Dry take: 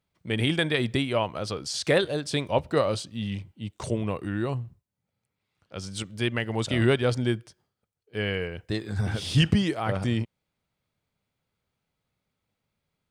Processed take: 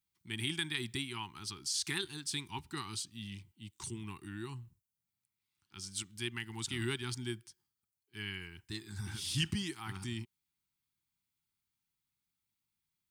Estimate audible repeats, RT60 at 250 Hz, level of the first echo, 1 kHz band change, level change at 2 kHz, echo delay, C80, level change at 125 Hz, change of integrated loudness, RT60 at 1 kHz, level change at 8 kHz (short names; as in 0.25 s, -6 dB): none, none, none, -14.5 dB, -10.5 dB, none, none, -14.5 dB, -12.0 dB, none, -1.0 dB